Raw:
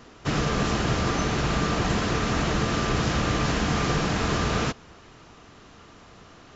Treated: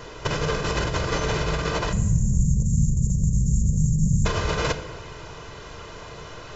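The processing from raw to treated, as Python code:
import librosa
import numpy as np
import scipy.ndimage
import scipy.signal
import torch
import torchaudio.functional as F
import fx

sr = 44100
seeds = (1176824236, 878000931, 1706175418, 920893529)

y = fx.cheby1_bandstop(x, sr, low_hz=220.0, high_hz=6900.0, order=5, at=(1.91, 4.25), fade=0.02)
y = fx.over_compress(y, sr, threshold_db=-28.0, ratio=-0.5)
y = fx.peak_eq(y, sr, hz=720.0, db=5.0, octaves=0.26)
y = y + 0.66 * np.pad(y, (int(2.0 * sr / 1000.0), 0))[:len(y)]
y = fx.room_shoebox(y, sr, seeds[0], volume_m3=500.0, walls='mixed', distance_m=0.45)
y = y * 10.0 ** (5.0 / 20.0)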